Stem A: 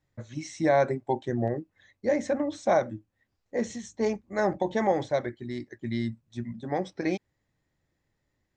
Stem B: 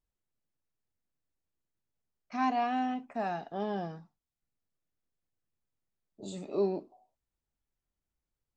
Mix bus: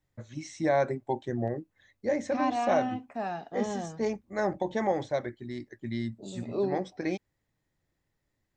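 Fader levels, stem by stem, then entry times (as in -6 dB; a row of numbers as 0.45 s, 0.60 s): -3.0 dB, 0.0 dB; 0.00 s, 0.00 s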